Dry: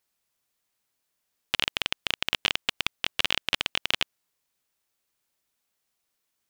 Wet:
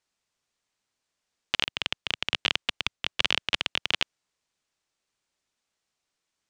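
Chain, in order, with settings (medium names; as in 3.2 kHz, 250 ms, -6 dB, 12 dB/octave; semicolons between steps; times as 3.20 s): low-pass 8 kHz 24 dB/octave; 1.64–3.95 s: three bands expanded up and down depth 100%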